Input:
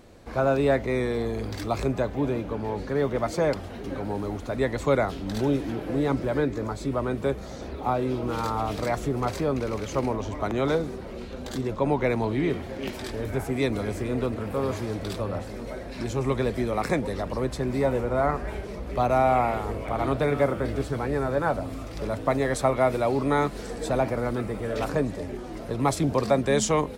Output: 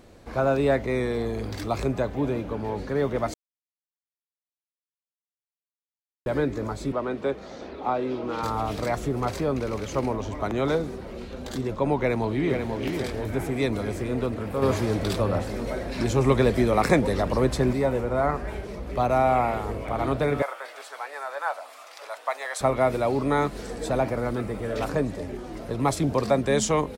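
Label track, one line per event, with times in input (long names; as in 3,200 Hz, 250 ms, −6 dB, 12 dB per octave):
3.340000	6.260000	silence
6.920000	8.430000	three-way crossover with the lows and the highs turned down lows −13 dB, under 200 Hz, highs −16 dB, over 5,900 Hz
11.980000	12.700000	delay throw 490 ms, feedback 50%, level −5.5 dB
14.620000	17.730000	clip gain +5.5 dB
20.420000	22.610000	high-pass filter 720 Hz 24 dB per octave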